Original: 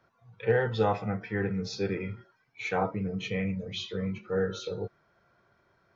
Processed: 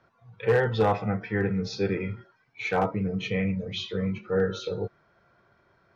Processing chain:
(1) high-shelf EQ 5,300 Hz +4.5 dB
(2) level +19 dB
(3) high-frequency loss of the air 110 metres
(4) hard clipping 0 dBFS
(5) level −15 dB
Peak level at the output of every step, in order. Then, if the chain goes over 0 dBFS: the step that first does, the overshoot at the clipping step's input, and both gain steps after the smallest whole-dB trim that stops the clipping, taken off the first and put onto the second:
−13.0, +6.0, +6.0, 0.0, −15.0 dBFS
step 2, 6.0 dB
step 2 +13 dB, step 5 −9 dB

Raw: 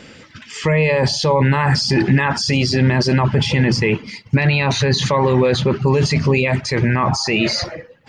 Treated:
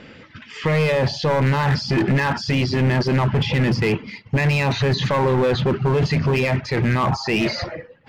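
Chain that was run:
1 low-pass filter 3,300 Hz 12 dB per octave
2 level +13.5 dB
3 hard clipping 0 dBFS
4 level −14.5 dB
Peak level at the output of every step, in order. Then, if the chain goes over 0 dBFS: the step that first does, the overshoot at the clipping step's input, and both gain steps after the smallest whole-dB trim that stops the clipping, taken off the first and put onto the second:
−4.5, +9.0, 0.0, −14.5 dBFS
step 2, 9.0 dB
step 2 +4.5 dB, step 4 −5.5 dB

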